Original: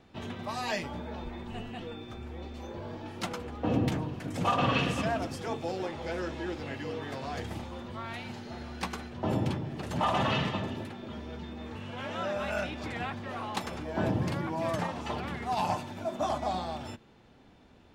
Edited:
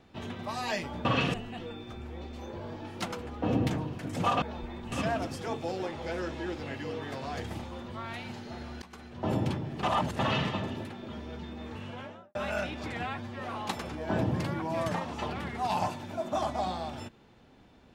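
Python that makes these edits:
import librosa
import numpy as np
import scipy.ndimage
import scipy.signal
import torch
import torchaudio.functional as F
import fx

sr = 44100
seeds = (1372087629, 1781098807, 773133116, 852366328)

y = fx.studio_fade_out(x, sr, start_s=11.83, length_s=0.52)
y = fx.edit(y, sr, fx.swap(start_s=1.05, length_s=0.5, other_s=4.63, other_length_s=0.29),
    fx.fade_in_from(start_s=8.82, length_s=0.46, floor_db=-23.0),
    fx.reverse_span(start_s=9.83, length_s=0.36),
    fx.stretch_span(start_s=13.03, length_s=0.25, factor=1.5), tone=tone)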